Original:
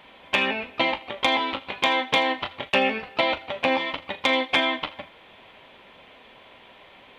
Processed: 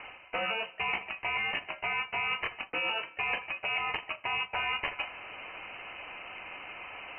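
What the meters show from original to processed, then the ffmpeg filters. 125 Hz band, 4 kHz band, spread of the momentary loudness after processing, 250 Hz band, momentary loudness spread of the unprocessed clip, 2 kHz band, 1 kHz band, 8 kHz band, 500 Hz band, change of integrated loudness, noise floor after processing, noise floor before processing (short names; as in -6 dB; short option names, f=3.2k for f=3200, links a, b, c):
-8.5 dB, -10.0 dB, 11 LU, -20.5 dB, 8 LU, -6.0 dB, -9.0 dB, under -30 dB, -15.0 dB, -9.5 dB, -54 dBFS, -51 dBFS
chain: -af "bandreject=f=1.1k:w=20,acontrast=87,lowpass=f=2.6k:t=q:w=0.5098,lowpass=f=2.6k:t=q:w=0.6013,lowpass=f=2.6k:t=q:w=0.9,lowpass=f=2.6k:t=q:w=2.563,afreqshift=-3100,areverse,acompressor=threshold=-31dB:ratio=6,areverse"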